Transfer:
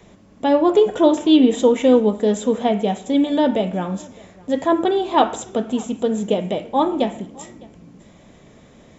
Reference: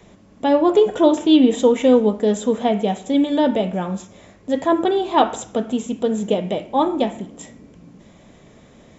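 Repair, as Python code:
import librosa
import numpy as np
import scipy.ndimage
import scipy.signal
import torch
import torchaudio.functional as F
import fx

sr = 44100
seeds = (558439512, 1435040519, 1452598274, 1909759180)

y = fx.fix_echo_inverse(x, sr, delay_ms=608, level_db=-24.0)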